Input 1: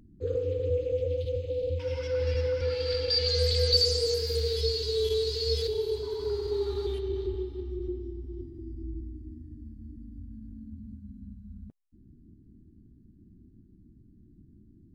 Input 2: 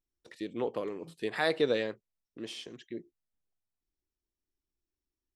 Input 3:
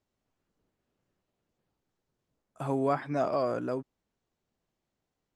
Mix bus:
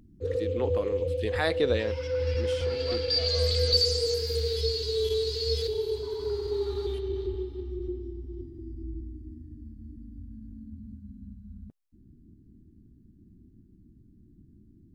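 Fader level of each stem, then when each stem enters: 0.0 dB, +1.5 dB, -16.5 dB; 0.00 s, 0.00 s, 0.00 s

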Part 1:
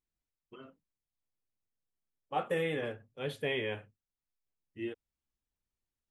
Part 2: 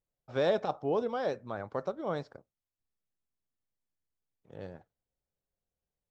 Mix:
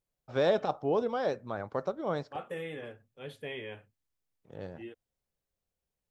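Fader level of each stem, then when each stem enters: -6.5 dB, +1.5 dB; 0.00 s, 0.00 s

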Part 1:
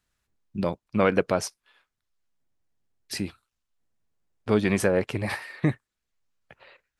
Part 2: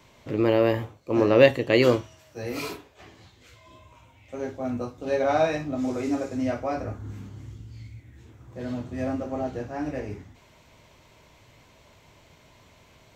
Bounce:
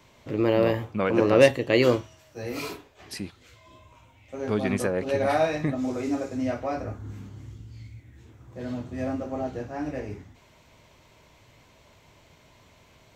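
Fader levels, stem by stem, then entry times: -4.5 dB, -1.0 dB; 0.00 s, 0.00 s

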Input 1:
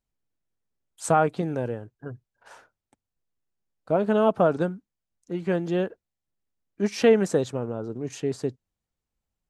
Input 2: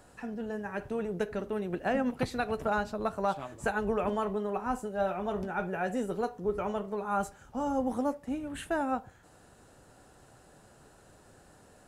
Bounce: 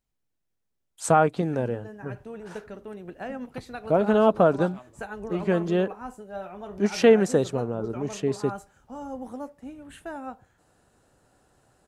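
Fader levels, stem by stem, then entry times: +1.5 dB, -6.0 dB; 0.00 s, 1.35 s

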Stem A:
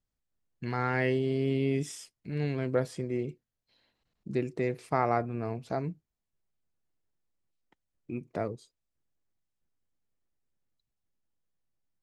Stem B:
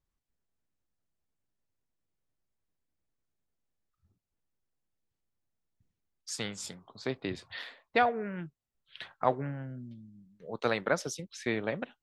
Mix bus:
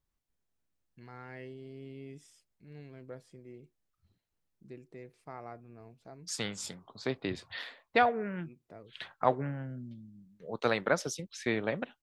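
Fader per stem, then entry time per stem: -18.0 dB, +0.5 dB; 0.35 s, 0.00 s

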